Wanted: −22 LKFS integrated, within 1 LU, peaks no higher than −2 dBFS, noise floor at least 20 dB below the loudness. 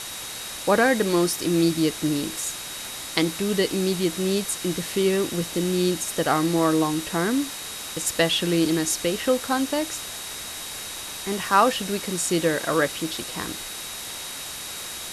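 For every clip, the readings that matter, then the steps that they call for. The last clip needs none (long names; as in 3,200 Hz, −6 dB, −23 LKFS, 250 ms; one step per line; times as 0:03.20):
interfering tone 3,800 Hz; level of the tone −40 dBFS; background noise floor −35 dBFS; target noise floor −45 dBFS; integrated loudness −24.5 LKFS; sample peak −4.0 dBFS; target loudness −22.0 LKFS
→ notch filter 3,800 Hz, Q 30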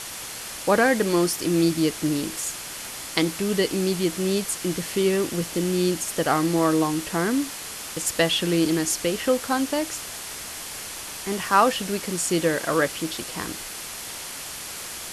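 interfering tone none found; background noise floor −36 dBFS; target noise floor −45 dBFS
→ broadband denoise 9 dB, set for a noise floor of −36 dBFS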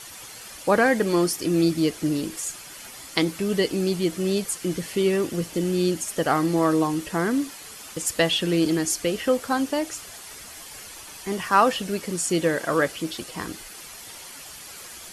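background noise floor −42 dBFS; target noise floor −44 dBFS
→ broadband denoise 6 dB, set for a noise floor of −42 dBFS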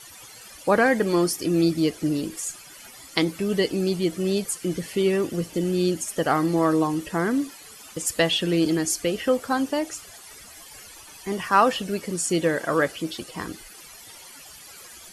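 background noise floor −45 dBFS; integrated loudness −24.0 LKFS; sample peak −5.0 dBFS; target loudness −22.0 LKFS
→ level +2 dB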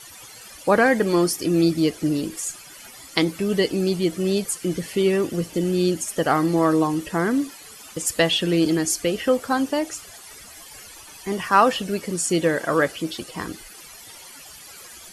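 integrated loudness −22.0 LKFS; sample peak −3.0 dBFS; background noise floor −43 dBFS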